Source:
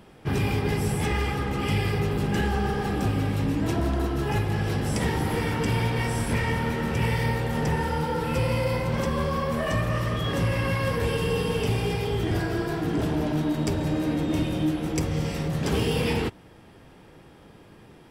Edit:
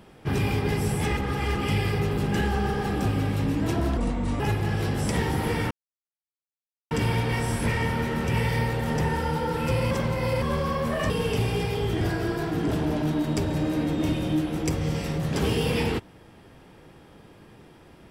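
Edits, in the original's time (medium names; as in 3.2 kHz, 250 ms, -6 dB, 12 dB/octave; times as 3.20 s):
1.17–1.55 s: reverse
3.97–4.27 s: speed 70%
5.58 s: insert silence 1.20 s
8.58–9.09 s: reverse
9.77–11.40 s: delete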